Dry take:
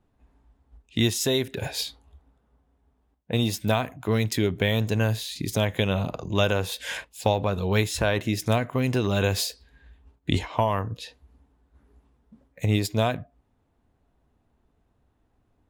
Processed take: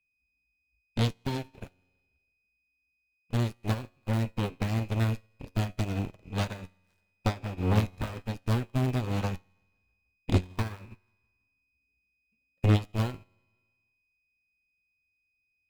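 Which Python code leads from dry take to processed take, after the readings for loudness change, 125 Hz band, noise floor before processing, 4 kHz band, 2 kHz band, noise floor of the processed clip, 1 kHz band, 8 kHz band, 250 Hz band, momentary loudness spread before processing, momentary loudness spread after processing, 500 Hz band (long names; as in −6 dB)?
−5.0 dB, −2.0 dB, −70 dBFS, −12.5 dB, −10.0 dB, −78 dBFS, −8.0 dB, −15.0 dB, −5.0 dB, 7 LU, 12 LU, −11.0 dB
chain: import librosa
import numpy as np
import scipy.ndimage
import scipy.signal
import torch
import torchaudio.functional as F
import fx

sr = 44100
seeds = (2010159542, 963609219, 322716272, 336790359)

p1 = fx.dead_time(x, sr, dead_ms=0.22)
p2 = fx.low_shelf(p1, sr, hz=340.0, db=10.0)
p3 = p2 + 10.0 ** (-40.0 / 20.0) * np.sin(2.0 * np.pi * 2500.0 * np.arange(len(p2)) / sr)
p4 = fx.cheby_harmonics(p3, sr, harmonics=(8,), levels_db=(-11,), full_scale_db=-3.0)
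p5 = fx.comb_fb(p4, sr, f0_hz=91.0, decay_s=1.4, harmonics='all', damping=0.0, mix_pct=70)
p6 = 10.0 ** (-23.5 / 20.0) * np.tanh(p5 / 10.0 ** (-23.5 / 20.0))
p7 = p5 + (p6 * librosa.db_to_amplitude(-10.0))
p8 = fx.echo_feedback(p7, sr, ms=164, feedback_pct=58, wet_db=-20)
y = fx.upward_expand(p8, sr, threshold_db=-37.0, expansion=2.5)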